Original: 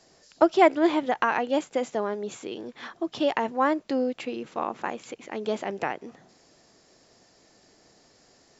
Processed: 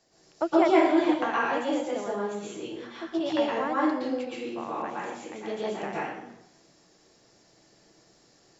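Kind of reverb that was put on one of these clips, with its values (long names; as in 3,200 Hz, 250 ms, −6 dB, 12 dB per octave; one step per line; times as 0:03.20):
dense smooth reverb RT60 0.73 s, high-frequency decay 0.9×, pre-delay 105 ms, DRR −6.5 dB
level −9 dB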